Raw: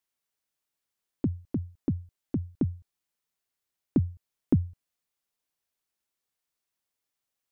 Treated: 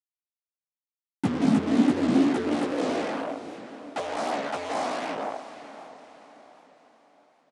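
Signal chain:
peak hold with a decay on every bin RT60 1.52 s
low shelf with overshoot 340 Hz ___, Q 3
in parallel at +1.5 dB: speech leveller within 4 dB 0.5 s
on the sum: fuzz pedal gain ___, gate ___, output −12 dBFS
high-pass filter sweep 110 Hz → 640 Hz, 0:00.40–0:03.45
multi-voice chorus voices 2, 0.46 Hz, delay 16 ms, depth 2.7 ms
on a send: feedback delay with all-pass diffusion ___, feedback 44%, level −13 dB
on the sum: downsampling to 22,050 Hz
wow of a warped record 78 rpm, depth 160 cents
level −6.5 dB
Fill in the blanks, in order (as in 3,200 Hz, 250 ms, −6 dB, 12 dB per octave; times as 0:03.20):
+6.5 dB, 30 dB, −25 dBFS, 579 ms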